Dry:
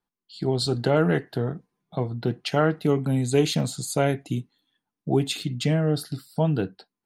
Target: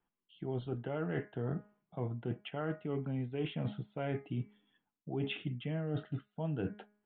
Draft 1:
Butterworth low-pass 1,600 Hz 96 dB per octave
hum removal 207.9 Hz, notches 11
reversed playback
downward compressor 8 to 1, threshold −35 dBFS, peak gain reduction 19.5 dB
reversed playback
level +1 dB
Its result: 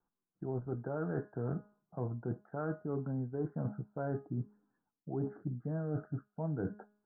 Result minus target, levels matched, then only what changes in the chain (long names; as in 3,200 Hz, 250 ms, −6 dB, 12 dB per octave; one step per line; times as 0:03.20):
2,000 Hz band −5.5 dB
change: Butterworth low-pass 3,300 Hz 96 dB per octave